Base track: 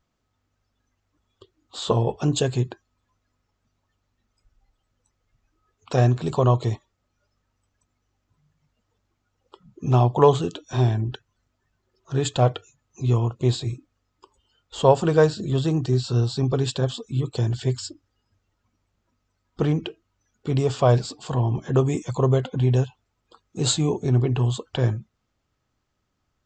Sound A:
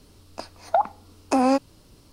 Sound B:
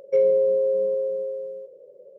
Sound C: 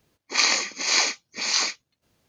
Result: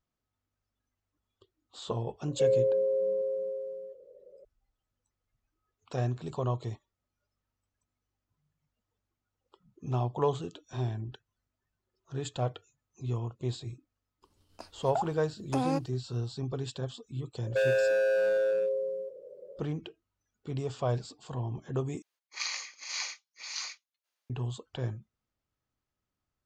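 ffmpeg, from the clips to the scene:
ffmpeg -i bed.wav -i cue0.wav -i cue1.wav -i cue2.wav -filter_complex "[2:a]asplit=2[link_01][link_02];[0:a]volume=-12.5dB[link_03];[1:a]agate=range=-33dB:threshold=-47dB:ratio=3:release=100:detection=peak[link_04];[link_02]asoftclip=type=hard:threshold=-24dB[link_05];[3:a]highpass=970[link_06];[link_03]asplit=2[link_07][link_08];[link_07]atrim=end=22.024[link_09];[link_06]atrim=end=2.28,asetpts=PTS-STARTPTS,volume=-14.5dB[link_10];[link_08]atrim=start=24.296[link_11];[link_01]atrim=end=2.18,asetpts=PTS-STARTPTS,volume=-6.5dB,afade=type=in:duration=0.004:curve=hsin,afade=type=out:start_time=2.176:duration=0.004:curve=hsin,adelay=2270[link_12];[link_04]atrim=end=2.12,asetpts=PTS-STARTPTS,volume=-11dB,afade=type=in:duration=0.004:curve=hsin,afade=type=out:start_time=2.116:duration=0.004:curve=hsin,adelay=14210[link_13];[link_05]atrim=end=2.18,asetpts=PTS-STARTPTS,volume=-0.5dB,afade=type=in:duration=0.004:curve=hsin,afade=type=out:start_time=2.176:duration=0.004:curve=hsin,adelay=17430[link_14];[link_09][link_10]acrossfade=duration=0.004:curve1=hsin:curve2=hsin[link_15];[link_15][link_11]acrossfade=duration=0.004:curve1=hsin:curve2=hsin[link_16];[link_16][link_12][link_13][link_14]amix=inputs=4:normalize=0" out.wav

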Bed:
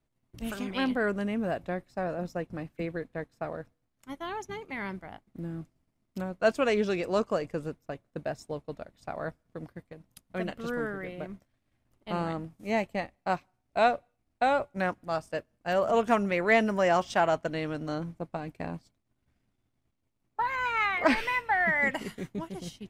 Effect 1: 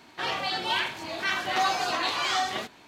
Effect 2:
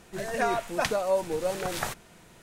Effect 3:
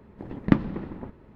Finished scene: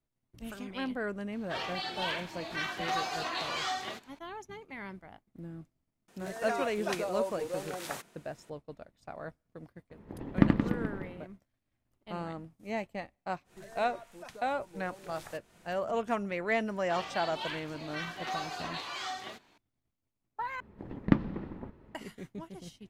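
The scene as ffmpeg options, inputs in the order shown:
ffmpeg -i bed.wav -i cue0.wav -i cue1.wav -i cue2.wav -filter_complex "[1:a]asplit=2[link_01][link_02];[2:a]asplit=2[link_03][link_04];[3:a]asplit=2[link_05][link_06];[0:a]volume=-7dB[link_07];[link_03]highpass=170[link_08];[link_05]aecho=1:1:80|176|291.2|429.4|595.3:0.631|0.398|0.251|0.158|0.1[link_09];[link_04]acompressor=threshold=-43dB:ratio=3:attack=29:release=233:knee=1:detection=rms[link_10];[link_07]asplit=2[link_11][link_12];[link_11]atrim=end=20.604[link_13];[link_06]atrim=end=1.35,asetpts=PTS-STARTPTS,volume=-5dB[link_14];[link_12]atrim=start=21.946[link_15];[link_01]atrim=end=2.87,asetpts=PTS-STARTPTS,volume=-7.5dB,afade=type=in:duration=0.004:curve=hsin,afade=type=out:start_time=2.866:duration=0.004:curve=hsin,adelay=1320[link_16];[link_08]atrim=end=2.42,asetpts=PTS-STARTPTS,volume=-7.5dB,afade=type=in:duration=0.004:curve=hsin,afade=type=out:start_time=2.416:duration=0.004:curve=hsin,adelay=6080[link_17];[link_09]atrim=end=1.35,asetpts=PTS-STARTPTS,volume=-4.5dB,afade=type=in:duration=0.004:curve=hsin,afade=type=out:start_time=1.346:duration=0.004:curve=hsin,adelay=9900[link_18];[link_10]atrim=end=2.42,asetpts=PTS-STARTPTS,volume=-7dB,afade=type=in:duration=0.1,afade=type=out:start_time=2.32:duration=0.1,adelay=13440[link_19];[link_02]atrim=end=2.87,asetpts=PTS-STARTPTS,volume=-11.5dB,afade=type=in:duration=0.004:curve=hsin,afade=type=out:start_time=2.866:duration=0.004:curve=hsin,adelay=16710[link_20];[link_13][link_14]acrossfade=duration=0.004:curve1=hsin:curve2=hsin[link_21];[link_21][link_15]acrossfade=duration=0.004:curve1=hsin:curve2=hsin[link_22];[link_22][link_16][link_17][link_18][link_19][link_20]amix=inputs=6:normalize=0" out.wav

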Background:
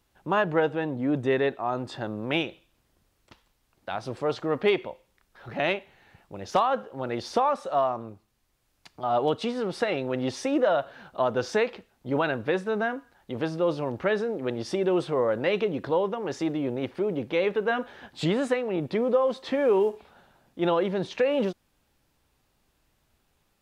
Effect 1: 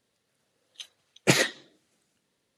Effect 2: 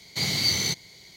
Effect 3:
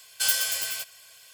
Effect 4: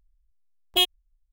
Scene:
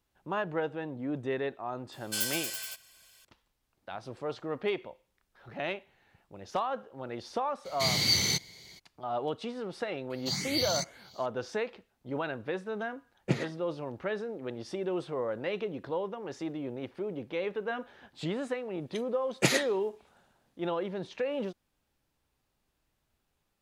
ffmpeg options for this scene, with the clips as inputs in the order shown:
ffmpeg -i bed.wav -i cue0.wav -i cue1.wav -i cue2.wav -filter_complex "[2:a]asplit=2[link_01][link_02];[1:a]asplit=2[link_03][link_04];[0:a]volume=-8.5dB[link_05];[link_02]asplit=2[link_06][link_07];[link_07]afreqshift=2.3[link_08];[link_06][link_08]amix=inputs=2:normalize=1[link_09];[link_03]aemphasis=mode=reproduction:type=riaa[link_10];[3:a]atrim=end=1.33,asetpts=PTS-STARTPTS,volume=-8dB,afade=type=in:duration=0.004:curve=hsin,afade=type=out:start_time=1.326:duration=0.004:curve=hsin,adelay=1920[link_11];[link_01]atrim=end=1.16,asetpts=PTS-STARTPTS,volume=-2dB,afade=type=in:duration=0.02,afade=type=out:start_time=1.14:duration=0.02,adelay=7640[link_12];[link_09]atrim=end=1.16,asetpts=PTS-STARTPTS,volume=-4.5dB,afade=type=in:duration=0.004:curve=hsin,afade=type=out:start_time=1.156:duration=0.004:curve=hsin,adelay=445410S[link_13];[link_10]atrim=end=2.57,asetpts=PTS-STARTPTS,volume=-13dB,afade=type=in:duration=0.004:curve=hsin,afade=type=out:start_time=2.566:duration=0.004:curve=hsin,adelay=12010[link_14];[link_04]atrim=end=2.57,asetpts=PTS-STARTPTS,volume=-4.5dB,afade=type=in:duration=0.004:curve=hsin,afade=type=out:start_time=2.566:duration=0.004:curve=hsin,adelay=18150[link_15];[link_05][link_11][link_12][link_13][link_14][link_15]amix=inputs=6:normalize=0" out.wav

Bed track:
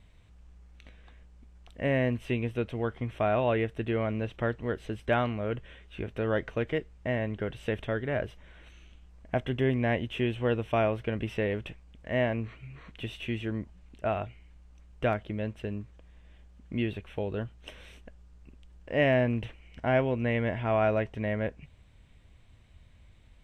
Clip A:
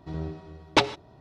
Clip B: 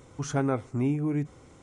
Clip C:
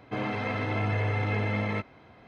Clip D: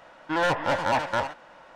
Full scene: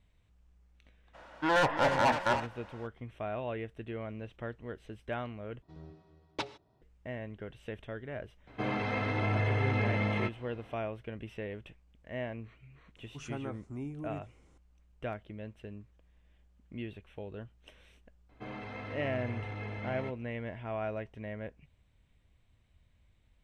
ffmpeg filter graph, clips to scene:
ffmpeg -i bed.wav -i cue0.wav -i cue1.wav -i cue2.wav -i cue3.wav -filter_complex "[3:a]asplit=2[link_01][link_02];[0:a]volume=-10.5dB[link_03];[link_02]bandreject=frequency=5000:width=27[link_04];[link_03]asplit=2[link_05][link_06];[link_05]atrim=end=5.624[link_07];[1:a]atrim=end=1.2,asetpts=PTS-STARTPTS,volume=-16.5dB[link_08];[link_06]atrim=start=6.816[link_09];[4:a]atrim=end=1.75,asetpts=PTS-STARTPTS,volume=-2.5dB,afade=type=in:duration=0.02,afade=type=out:start_time=1.73:duration=0.02,adelay=1130[link_10];[link_01]atrim=end=2.27,asetpts=PTS-STARTPTS,volume=-2dB,afade=type=in:duration=0.004:curve=hsin,afade=type=out:start_time=2.266:duration=0.004:curve=hsin,adelay=8470[link_11];[2:a]atrim=end=1.62,asetpts=PTS-STARTPTS,volume=-13.5dB,afade=type=in:duration=0.004:curve=hsin,afade=type=out:start_time=1.616:duration=0.004:curve=hsin,adelay=12960[link_12];[link_04]atrim=end=2.27,asetpts=PTS-STARTPTS,volume=-12dB,afade=type=in:duration=0.004:curve=hsin,afade=type=out:start_time=2.266:duration=0.004:curve=hsin,adelay=18290[link_13];[link_07][link_08]acrossfade=duration=0.004:curve1=hsin:curve2=hsin[link_14];[link_14][link_09]acrossfade=duration=0.004:curve1=hsin:curve2=hsin[link_15];[link_15][link_10][link_11][link_12][link_13]amix=inputs=5:normalize=0" out.wav

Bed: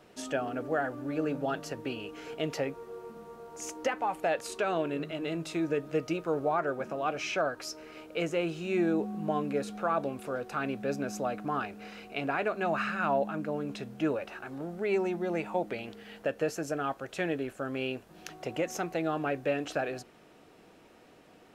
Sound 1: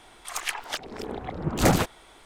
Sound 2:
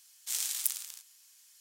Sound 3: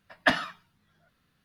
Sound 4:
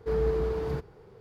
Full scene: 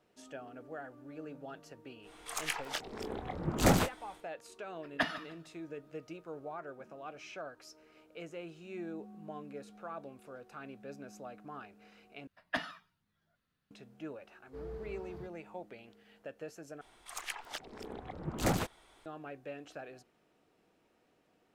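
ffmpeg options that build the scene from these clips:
ffmpeg -i bed.wav -i cue0.wav -i cue1.wav -i cue2.wav -i cue3.wav -filter_complex "[1:a]asplit=2[link_01][link_02];[3:a]asplit=2[link_03][link_04];[0:a]volume=-14.5dB[link_05];[link_01]asplit=2[link_06][link_07];[link_07]adelay=23,volume=-9.5dB[link_08];[link_06][link_08]amix=inputs=2:normalize=0[link_09];[link_03]aecho=1:1:149|298|447:0.141|0.0396|0.0111[link_10];[link_05]asplit=3[link_11][link_12][link_13];[link_11]atrim=end=12.274[link_14];[link_04]atrim=end=1.44,asetpts=PTS-STARTPTS,volume=-12.5dB[link_15];[link_12]atrim=start=13.706:end=16.814[link_16];[link_02]atrim=end=2.25,asetpts=PTS-STARTPTS,volume=-10.5dB[link_17];[link_13]atrim=start=19.056[link_18];[link_09]atrim=end=2.25,asetpts=PTS-STARTPTS,volume=-6dB,afade=type=in:duration=0.1,afade=type=out:start_time=2.15:duration=0.1,adelay=2010[link_19];[link_10]atrim=end=1.44,asetpts=PTS-STARTPTS,volume=-9.5dB,afade=type=in:duration=0.004:curve=hsin,afade=type=out:start_time=1.436:duration=0.004:curve=hsin,adelay=208593S[link_20];[4:a]atrim=end=1.2,asetpts=PTS-STARTPTS,volume=-17.5dB,afade=type=in:duration=0.004:curve=hsin,afade=type=out:start_time=1.196:duration=0.004:curve=hsin,adelay=14470[link_21];[link_14][link_15]acrossfade=duration=0.004:curve1=hsin:curve2=hsin[link_22];[link_22][link_16]acrossfade=duration=0.004:curve1=hsin:curve2=hsin[link_23];[link_23][link_17]acrossfade=duration=0.004:curve1=hsin:curve2=hsin[link_24];[link_24][link_18]acrossfade=duration=0.004:curve1=hsin:curve2=hsin[link_25];[link_25][link_19][link_20][link_21]amix=inputs=4:normalize=0" out.wav

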